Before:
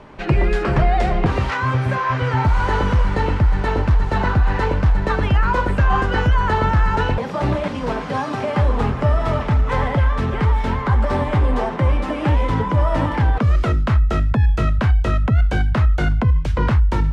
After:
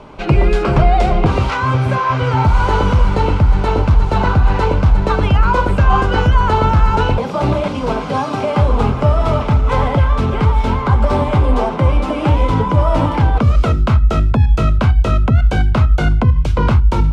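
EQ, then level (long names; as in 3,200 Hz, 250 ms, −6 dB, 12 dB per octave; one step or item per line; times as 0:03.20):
parametric band 1,800 Hz −13.5 dB 0.22 octaves
mains-hum notches 60/120/180/240/300/360 Hz
+5.0 dB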